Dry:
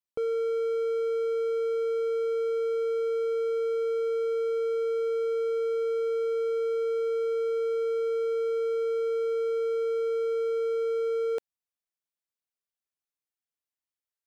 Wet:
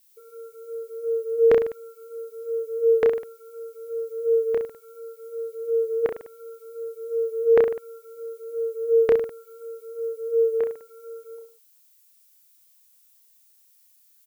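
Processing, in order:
expanding power law on the bin magnitudes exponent 2.3
all-pass phaser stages 12, 2.8 Hz, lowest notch 350–3,100 Hz
auto-filter high-pass saw down 0.66 Hz 440–1,900 Hz
background noise violet −69 dBFS
on a send: reverse bouncing-ball delay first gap 30 ms, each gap 1.15×, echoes 5
on the sum: level +8 dB

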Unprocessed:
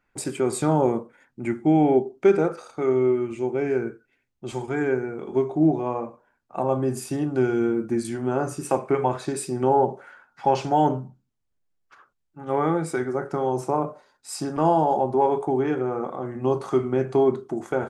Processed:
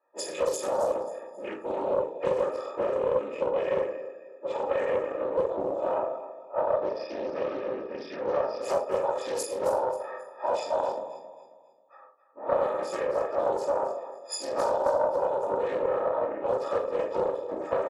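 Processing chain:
every partial snapped to a pitch grid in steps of 6 semitones
0:06.57–0:08.62: elliptic low-pass filter 5,000 Hz, stop band 40 dB
low-pass that shuts in the quiet parts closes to 930 Hz, open at −15.5 dBFS
downward compressor 12 to 1, threshold −28 dBFS, peak gain reduction 16 dB
random phases in short frames
high-pass with resonance 530 Hz, resonance Q 4.9
double-tracking delay 43 ms −10.5 dB
repeating echo 269 ms, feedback 36%, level −13 dB
rectangular room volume 230 cubic metres, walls furnished, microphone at 2.7 metres
highs frequency-modulated by the lows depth 0.24 ms
level −8.5 dB

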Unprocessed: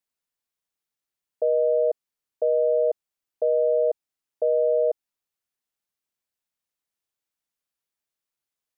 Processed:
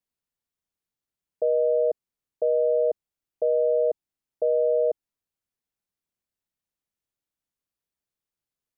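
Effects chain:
low-shelf EQ 390 Hz +10.5 dB
level −4.5 dB

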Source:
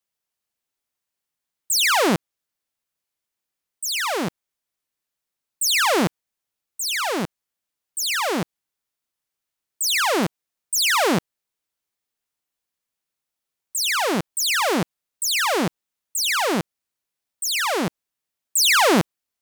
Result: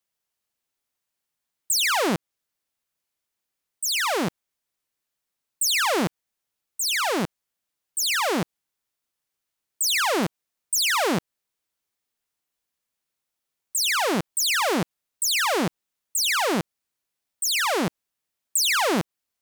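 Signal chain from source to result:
downward compressor, threshold −21 dBFS, peak gain reduction 7 dB
level +1 dB

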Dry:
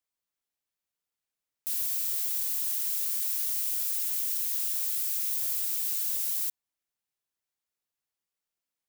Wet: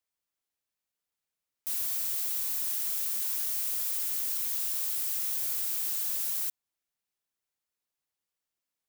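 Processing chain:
hard clipping −27 dBFS, distortion −13 dB

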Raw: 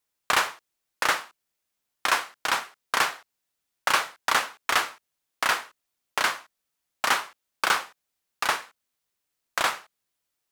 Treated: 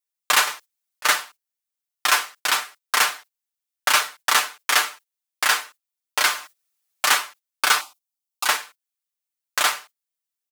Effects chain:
0:06.30–0:07.18: mu-law and A-law mismatch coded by mu
noise gate −47 dBFS, range −16 dB
spectral tilt +2.5 dB per octave
comb filter 6.7 ms, depth 81%
0:00.47–0:01.05: compressor whose output falls as the input rises −29 dBFS, ratio −0.5
0:07.81–0:08.46: phaser with its sweep stopped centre 470 Hz, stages 6

